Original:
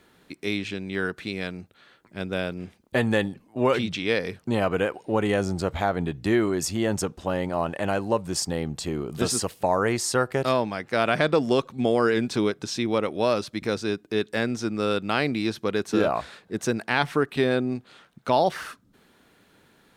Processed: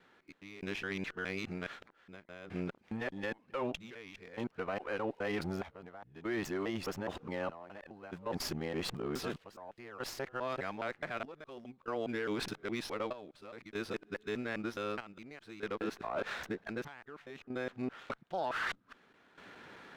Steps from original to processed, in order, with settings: time reversed locally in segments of 208 ms; low-pass 2.1 kHz 12 dB/octave; tilt EQ +3 dB/octave; reverse; compression 8:1, threshold -40 dBFS, peak gain reduction 21.5 dB; reverse; peak limiter -35 dBFS, peak gain reduction 11.5 dB; trance gate "...xxxxxx" 72 bpm -12 dB; sliding maximum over 3 samples; trim +8.5 dB

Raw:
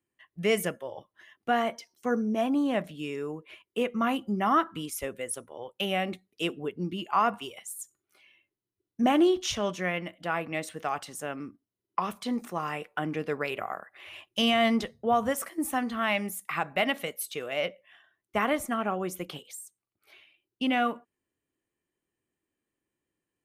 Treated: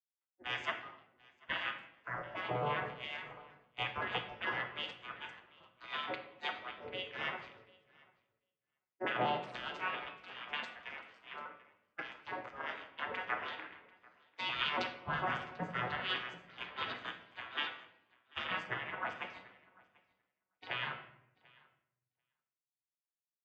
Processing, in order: vocoder on a broken chord minor triad, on B2, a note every 138 ms; spectral gate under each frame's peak -25 dB weak; low-pass 1.7 kHz 12 dB/octave; tilt shelf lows -6.5 dB, about 920 Hz; peak limiter -41.5 dBFS, peak gain reduction 11 dB; compression 2:1, threshold -53 dBFS, peak gain reduction 4 dB; tremolo triangle 6.1 Hz, depth 40%; feedback delay 741 ms, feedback 24%, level -13 dB; on a send at -4 dB: reverberation RT60 1.9 s, pre-delay 3 ms; on the sum: three bands expanded up and down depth 100%; trim +17.5 dB

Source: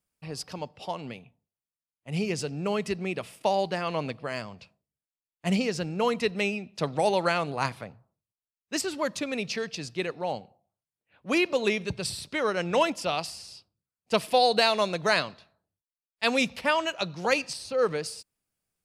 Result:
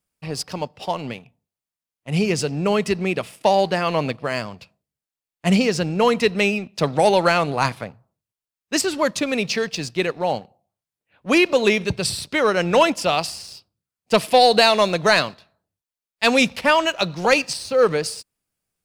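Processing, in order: waveshaping leveller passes 1; trim +5 dB

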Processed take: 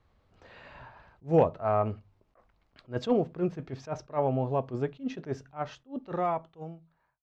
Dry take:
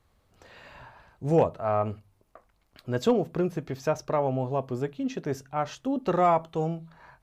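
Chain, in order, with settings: fade out at the end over 2.09 s; distance through air 140 m; attacks held to a fixed rise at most 290 dB/s

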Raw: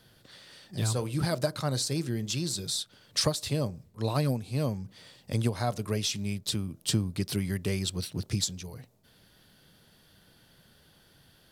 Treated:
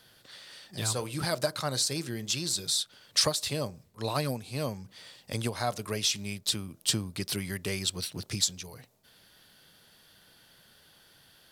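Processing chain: bass shelf 440 Hz -10.5 dB; trim +3.5 dB

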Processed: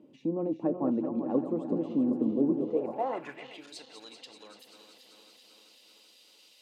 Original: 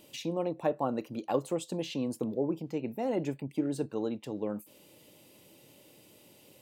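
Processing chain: backward echo that repeats 193 ms, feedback 82%, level -8 dB; band-pass sweep 270 Hz -> 4.3 kHz, 2.54–3.69 s; peaking EQ 1.2 kHz +5 dB 0.99 oct; trim +7.5 dB

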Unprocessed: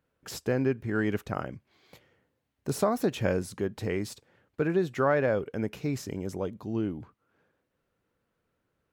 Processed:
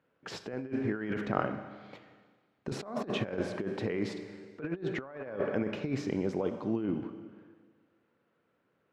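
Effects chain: band-pass 160–3200 Hz; Schroeder reverb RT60 1.6 s, combs from 30 ms, DRR 10 dB; compressor with a negative ratio -32 dBFS, ratio -0.5

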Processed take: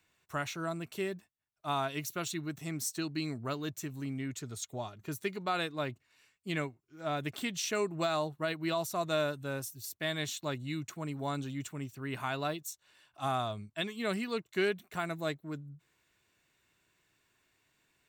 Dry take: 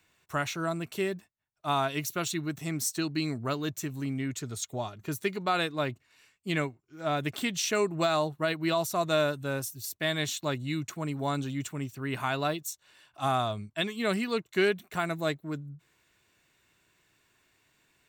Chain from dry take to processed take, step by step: trim -5 dB

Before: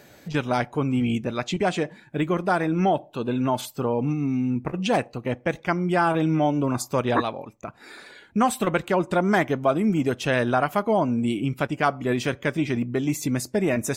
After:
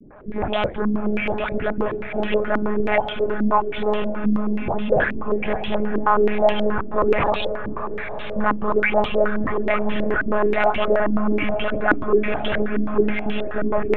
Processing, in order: delay that grows with frequency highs late, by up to 382 ms; hum notches 50/100/150/200/250/300 Hz; saturation -24 dBFS, distortion -10 dB; monotone LPC vocoder at 8 kHz 210 Hz; echo that smears into a reverb 545 ms, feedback 74%, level -11 dB; step-sequenced low-pass 9.4 Hz 280–3100 Hz; trim +6 dB

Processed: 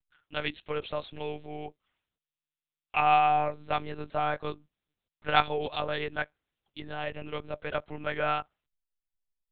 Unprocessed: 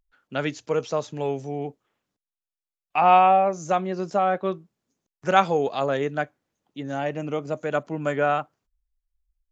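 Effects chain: treble shelf 3 kHz +9 dB; monotone LPC vocoder at 8 kHz 150 Hz; tilt shelf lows -4.5 dB, about 1.3 kHz; trim -5.5 dB

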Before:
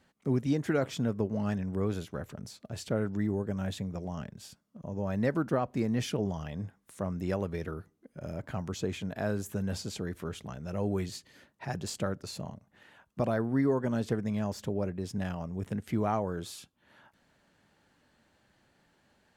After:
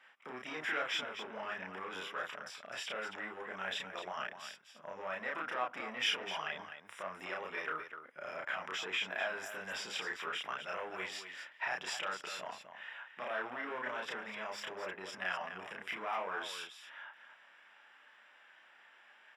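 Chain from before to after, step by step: in parallel at -9 dB: wavefolder -31.5 dBFS; on the sum: Savitzky-Golay filter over 25 samples; peak limiter -26.5 dBFS, peak gain reduction 10.5 dB; high-pass 1.3 kHz 12 dB/octave; loudspeakers at several distances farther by 11 m -1 dB, 87 m -8 dB; trim +8 dB

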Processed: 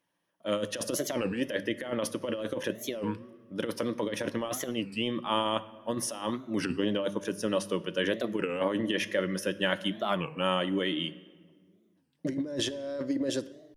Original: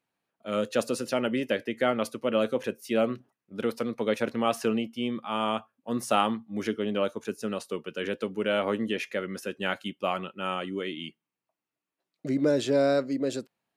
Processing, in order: hum notches 50/100/150/200 Hz; compressor with a negative ratio -29 dBFS, ratio -0.5; rippled EQ curve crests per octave 1.2, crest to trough 8 dB; simulated room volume 1800 m³, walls mixed, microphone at 0.33 m; warped record 33 1/3 rpm, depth 250 cents

